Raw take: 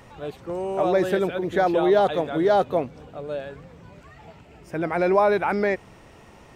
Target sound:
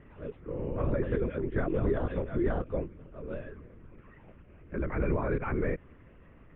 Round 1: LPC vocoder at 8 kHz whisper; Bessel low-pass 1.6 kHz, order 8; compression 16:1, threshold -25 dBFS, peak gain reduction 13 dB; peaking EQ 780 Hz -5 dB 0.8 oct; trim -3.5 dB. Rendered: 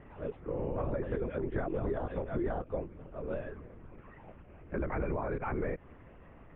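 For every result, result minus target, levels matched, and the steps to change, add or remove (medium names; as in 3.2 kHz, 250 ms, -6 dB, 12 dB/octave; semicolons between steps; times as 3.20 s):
compression: peak gain reduction +7 dB; 1 kHz band +4.0 dB
change: compression 16:1, threshold -17.5 dBFS, peak gain reduction 6 dB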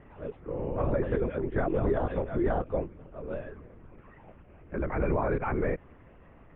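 1 kHz band +4.0 dB
change: peaking EQ 780 Hz -13.5 dB 0.8 oct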